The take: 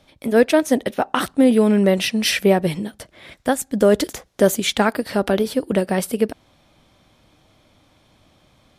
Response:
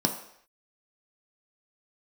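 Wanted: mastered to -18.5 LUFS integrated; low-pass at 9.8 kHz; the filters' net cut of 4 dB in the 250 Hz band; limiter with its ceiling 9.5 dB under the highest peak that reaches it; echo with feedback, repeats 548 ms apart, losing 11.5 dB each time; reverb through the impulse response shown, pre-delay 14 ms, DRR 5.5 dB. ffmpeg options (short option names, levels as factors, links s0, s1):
-filter_complex "[0:a]lowpass=9800,equalizer=f=250:t=o:g=-5,alimiter=limit=0.237:level=0:latency=1,aecho=1:1:548|1096|1644:0.266|0.0718|0.0194,asplit=2[s0][s1];[1:a]atrim=start_sample=2205,adelay=14[s2];[s1][s2]afir=irnorm=-1:irlink=0,volume=0.178[s3];[s0][s3]amix=inputs=2:normalize=0,volume=1.33"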